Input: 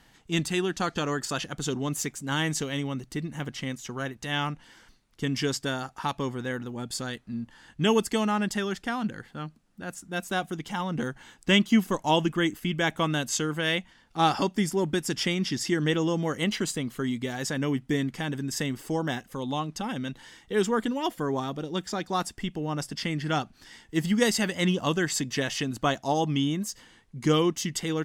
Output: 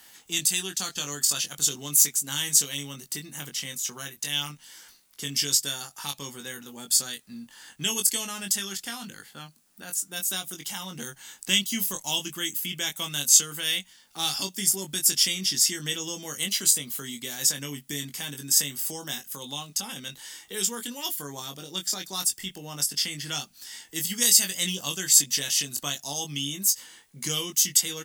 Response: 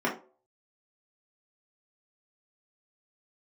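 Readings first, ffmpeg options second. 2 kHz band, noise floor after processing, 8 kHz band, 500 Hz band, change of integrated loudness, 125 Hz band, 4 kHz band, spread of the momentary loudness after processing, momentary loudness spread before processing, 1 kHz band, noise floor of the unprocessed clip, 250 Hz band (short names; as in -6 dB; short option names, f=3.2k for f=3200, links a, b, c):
-3.5 dB, -58 dBFS, +14.0 dB, -12.5 dB, +3.5 dB, -10.0 dB, +6.0 dB, 17 LU, 10 LU, -11.0 dB, -59 dBFS, -11.5 dB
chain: -filter_complex "[0:a]aemphasis=mode=production:type=riaa,asplit=2[a][b];[b]adelay=21,volume=-5dB[c];[a][c]amix=inputs=2:normalize=0,acrossover=split=190|3000[d][e][f];[e]acompressor=threshold=-49dB:ratio=2[g];[d][g][f]amix=inputs=3:normalize=0,volume=1dB"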